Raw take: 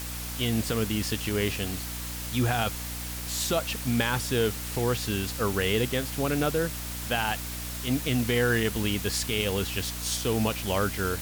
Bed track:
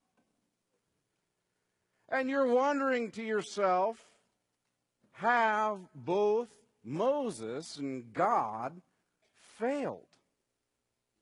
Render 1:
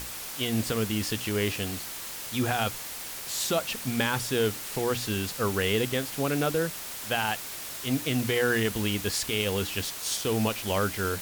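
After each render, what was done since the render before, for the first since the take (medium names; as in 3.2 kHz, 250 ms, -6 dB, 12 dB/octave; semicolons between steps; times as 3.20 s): hum notches 60/120/180/240/300 Hz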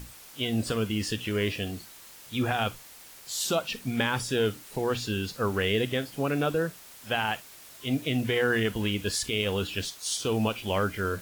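noise print and reduce 11 dB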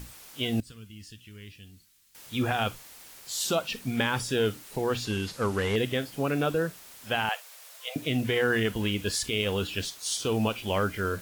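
0.60–2.15 s: amplifier tone stack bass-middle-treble 6-0-2; 5.05–5.76 s: one-bit delta coder 64 kbps, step -42 dBFS; 7.29–7.96 s: brick-wall FIR high-pass 440 Hz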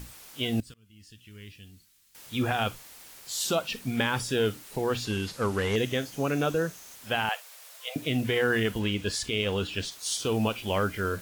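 0.74–1.41 s: fade in linear, from -22.5 dB; 5.72–6.96 s: peaking EQ 6.3 kHz +9.5 dB 0.24 oct; 8.79–9.92 s: peaking EQ 14 kHz -10 dB 0.83 oct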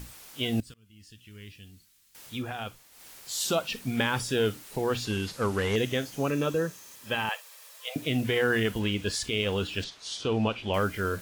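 2.27–3.07 s: dip -8.5 dB, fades 0.16 s; 6.30–7.85 s: comb of notches 720 Hz; 9.84–10.74 s: low-pass 4.2 kHz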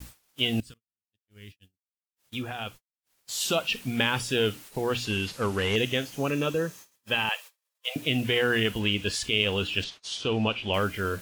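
gate -45 dBFS, range -55 dB; dynamic bell 2.8 kHz, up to +8 dB, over -48 dBFS, Q 2.7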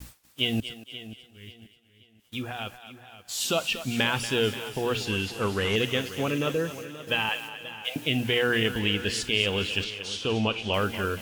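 thinning echo 235 ms, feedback 44%, high-pass 470 Hz, level -11.5 dB; modulated delay 532 ms, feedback 33%, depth 55 cents, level -14.5 dB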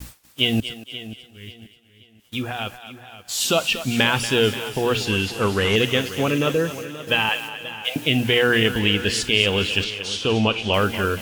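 trim +6.5 dB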